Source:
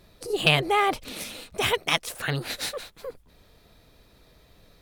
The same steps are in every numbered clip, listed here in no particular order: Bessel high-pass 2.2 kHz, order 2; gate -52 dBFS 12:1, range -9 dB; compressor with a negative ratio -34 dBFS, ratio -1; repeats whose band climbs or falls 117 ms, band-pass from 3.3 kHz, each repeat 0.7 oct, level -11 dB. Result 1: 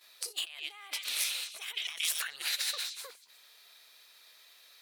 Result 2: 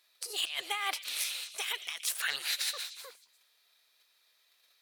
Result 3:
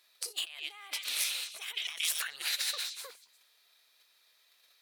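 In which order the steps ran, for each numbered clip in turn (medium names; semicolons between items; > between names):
repeats whose band climbs or falls > compressor with a negative ratio > gate > Bessel high-pass; gate > Bessel high-pass > compressor with a negative ratio > repeats whose band climbs or falls; gate > repeats whose band climbs or falls > compressor with a negative ratio > Bessel high-pass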